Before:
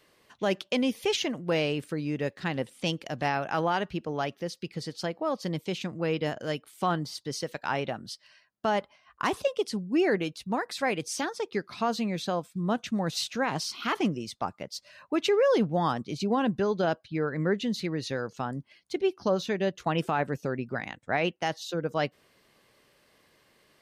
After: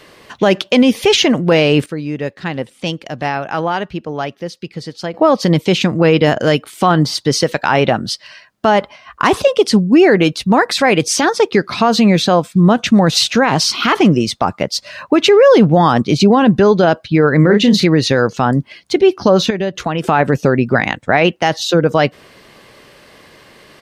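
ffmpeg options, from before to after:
ffmpeg -i in.wav -filter_complex "[0:a]asplit=3[link_01][link_02][link_03];[link_01]afade=type=out:start_time=17.43:duration=0.02[link_04];[link_02]asplit=2[link_05][link_06];[link_06]adelay=34,volume=-6dB[link_07];[link_05][link_07]amix=inputs=2:normalize=0,afade=type=in:start_time=17.43:duration=0.02,afade=type=out:start_time=17.83:duration=0.02[link_08];[link_03]afade=type=in:start_time=17.83:duration=0.02[link_09];[link_04][link_08][link_09]amix=inputs=3:normalize=0,asettb=1/sr,asplit=3[link_10][link_11][link_12];[link_10]atrim=end=19.504[link_13];[link_11]atrim=start=19.5:end=20.04,asetpts=PTS-STARTPTS,afade=type=in:duration=0.004:curve=qsin,afade=type=out:start_time=0.536:duration=0.004:curve=qsin,acompressor=threshold=-39dB:ratio=3:attack=3.2:release=140:knee=1:detection=peak[link_14];[link_12]atrim=start=20.036[link_15];[link_13][link_14]acrossfade=duration=0.004:curve1=hsin:curve2=qsin[link_16];[link_16][link_15]acrossfade=duration=0.004:curve1=qsin:curve2=hsin,asplit=3[link_17][link_18][link_19];[link_17]atrim=end=1.862[link_20];[link_18]atrim=start=1.858:end=5.142,asetpts=PTS-STARTPTS,volume=-12dB[link_21];[link_19]atrim=start=5.138[link_22];[link_20][link_21]acrossfade=duration=0.004:curve1=hsin:curve2=hsin[link_23];[link_23][link_22]acrossfade=duration=0.004:curve1=hsin:curve2=hsin,highshelf=frequency=8000:gain=-8.5,alimiter=level_in=22dB:limit=-1dB:release=50:level=0:latency=1,volume=-1dB" out.wav

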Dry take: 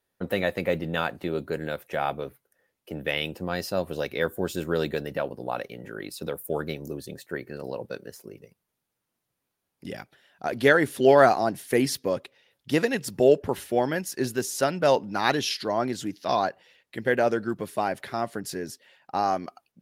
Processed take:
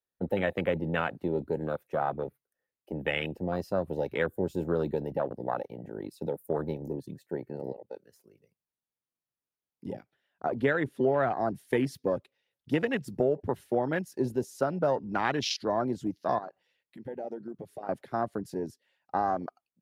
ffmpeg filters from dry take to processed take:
ffmpeg -i in.wav -filter_complex "[0:a]asettb=1/sr,asplit=3[link_01][link_02][link_03];[link_01]atrim=end=9.944[link_04];[link_02]atrim=start=9.94:end=11.41,asetpts=PTS-STARTPTS,afade=type=in:duration=0.004:curve=qsin,afade=type=out:start_time=1.466:duration=0.004:curve=qsin,bass=frequency=250:gain=0,treble=frequency=4000:gain=-7[link_05];[link_03]atrim=start=11.406[link_06];[link_04][link_05]acrossfade=duration=0.004:curve1=hsin:curve2=qsin[link_07];[link_07][link_06]acrossfade=duration=0.004:curve1=qsin:curve2=hsin,asettb=1/sr,asplit=3[link_08][link_09][link_10];[link_08]atrim=end=16.384[link_11];[link_09]atrim=start=16.38:end=17.89,asetpts=PTS-STARTPTS,afade=type=in:duration=0.004:curve=qsin,afade=type=out:start_time=1.506:duration=0.004:curve=qsin,acompressor=threshold=-39dB:ratio=2.5:attack=3.2:release=140:knee=1:detection=peak[link_12];[link_10]atrim=start=17.886[link_13];[link_11][link_12]acrossfade=duration=0.004:curve1=hsin:curve2=qsin[link_14];[link_14][link_13]acrossfade=duration=0.004:curve1=qsin:curve2=hsin,asplit=2[link_15][link_16];[link_15]atrim=end=7.73,asetpts=PTS-STARTPTS,afade=type=out:start_time=7.726:duration=0.004:curve=hsin:silence=0.237137[link_17];[link_16]atrim=start=7.73,asetpts=PTS-STARTPTS,afade=type=in:duration=0.46:silence=0.237137[link_18];[link_17][link_18]concat=n=2:v=0:a=1,afwtdn=0.0282,acrossover=split=130[link_19][link_20];[link_20]acompressor=threshold=-23dB:ratio=6[link_21];[link_19][link_21]amix=inputs=2:normalize=0" out.wav

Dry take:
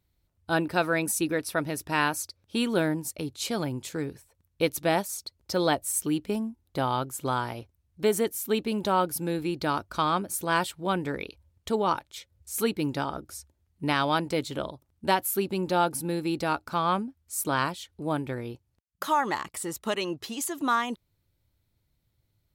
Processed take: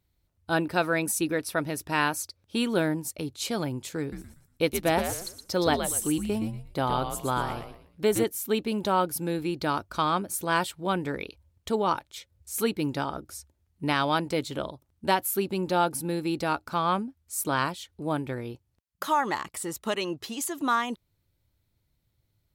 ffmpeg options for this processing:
ffmpeg -i in.wav -filter_complex "[0:a]asettb=1/sr,asplit=3[link_01][link_02][link_03];[link_01]atrim=end=4.004[link_04];[link_02]atrim=start=4:end=8.24,asetpts=PTS-STARTPTS,afade=type=in:duration=0.004:curve=qsin,afade=type=out:start_time=4.236:duration=0.004:curve=qsin,asplit=5[link_05][link_06][link_07][link_08][link_09];[link_06]adelay=119,afreqshift=-97,volume=-7dB[link_10];[link_07]adelay=238,afreqshift=-194,volume=-17.2dB[link_11];[link_08]adelay=357,afreqshift=-291,volume=-27.3dB[link_12];[link_09]adelay=476,afreqshift=-388,volume=-37.5dB[link_13];[link_05][link_10][link_11][link_12][link_13]amix=inputs=5:normalize=0,atrim=end_sample=186984[link_14];[link_03]atrim=start=8.236[link_15];[link_04][link_14]acrossfade=duration=0.004:curve1=hsin:curve2=qsin[link_16];[link_16][link_15]acrossfade=duration=0.004:curve1=qsin:curve2=hsin" out.wav

